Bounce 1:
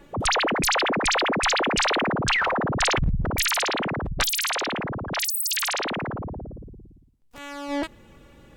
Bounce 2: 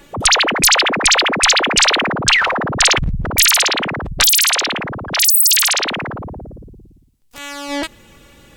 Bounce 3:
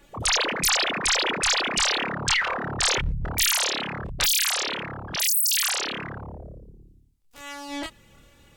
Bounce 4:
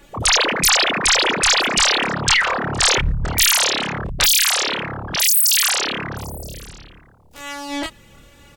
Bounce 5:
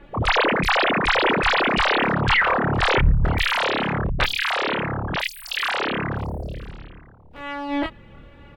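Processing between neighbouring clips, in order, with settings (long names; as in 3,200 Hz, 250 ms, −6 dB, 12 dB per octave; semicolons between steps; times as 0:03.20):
high-shelf EQ 2,100 Hz +11.5 dB; level +3.5 dB
multi-voice chorus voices 4, 0.29 Hz, delay 27 ms, depth 1.4 ms; level −7 dB
single-tap delay 972 ms −23.5 dB; level +7 dB
high-frequency loss of the air 480 metres; level +3.5 dB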